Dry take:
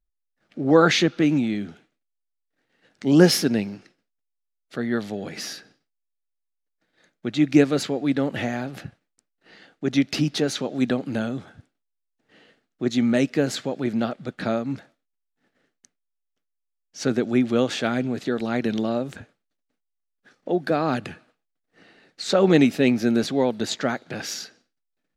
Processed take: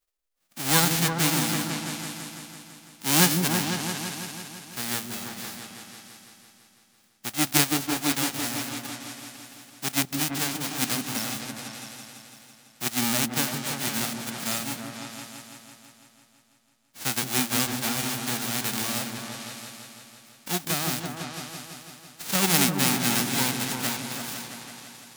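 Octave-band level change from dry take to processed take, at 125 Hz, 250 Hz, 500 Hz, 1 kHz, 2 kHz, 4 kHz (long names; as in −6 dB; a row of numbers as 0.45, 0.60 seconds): −3.0, −8.0, −13.0, −0.5, +0.5, +3.0 decibels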